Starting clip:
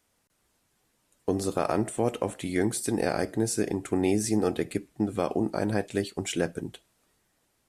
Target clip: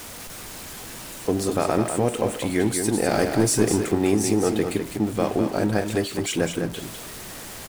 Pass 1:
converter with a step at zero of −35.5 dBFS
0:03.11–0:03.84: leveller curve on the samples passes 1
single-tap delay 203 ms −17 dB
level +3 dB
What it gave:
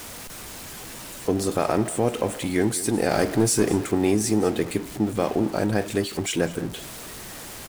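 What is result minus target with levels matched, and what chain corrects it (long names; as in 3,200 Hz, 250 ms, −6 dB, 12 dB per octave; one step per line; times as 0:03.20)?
echo-to-direct −10.5 dB
converter with a step at zero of −35.5 dBFS
0:03.11–0:03.84: leveller curve on the samples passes 1
single-tap delay 203 ms −6.5 dB
level +3 dB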